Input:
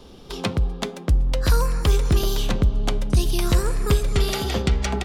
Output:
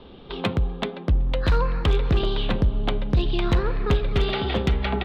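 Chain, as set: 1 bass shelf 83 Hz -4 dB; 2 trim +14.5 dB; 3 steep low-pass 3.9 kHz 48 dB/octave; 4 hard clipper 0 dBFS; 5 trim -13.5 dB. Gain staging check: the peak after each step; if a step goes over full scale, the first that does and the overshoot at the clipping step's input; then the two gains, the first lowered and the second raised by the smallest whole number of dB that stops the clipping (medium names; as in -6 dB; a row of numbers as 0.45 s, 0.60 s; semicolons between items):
-9.0 dBFS, +5.5 dBFS, +5.5 dBFS, 0.0 dBFS, -13.5 dBFS; step 2, 5.5 dB; step 2 +8.5 dB, step 5 -7.5 dB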